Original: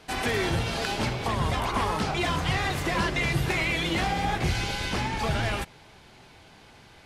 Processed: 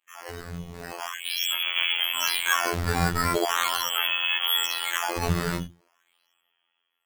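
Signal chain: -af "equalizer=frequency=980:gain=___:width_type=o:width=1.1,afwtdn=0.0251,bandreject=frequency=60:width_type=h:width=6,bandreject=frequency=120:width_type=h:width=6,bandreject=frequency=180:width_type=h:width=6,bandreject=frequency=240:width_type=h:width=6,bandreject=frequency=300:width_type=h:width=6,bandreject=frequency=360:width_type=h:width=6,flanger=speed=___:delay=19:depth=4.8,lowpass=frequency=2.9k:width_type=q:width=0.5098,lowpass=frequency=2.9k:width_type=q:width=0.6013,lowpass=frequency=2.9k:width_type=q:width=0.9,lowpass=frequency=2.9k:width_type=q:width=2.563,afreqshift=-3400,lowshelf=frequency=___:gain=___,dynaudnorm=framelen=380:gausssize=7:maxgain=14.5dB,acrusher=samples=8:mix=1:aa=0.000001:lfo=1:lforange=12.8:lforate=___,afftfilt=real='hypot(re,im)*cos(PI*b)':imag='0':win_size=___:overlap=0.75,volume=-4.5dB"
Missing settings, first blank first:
-2.5, 0.76, 250, -10.5, 0.41, 2048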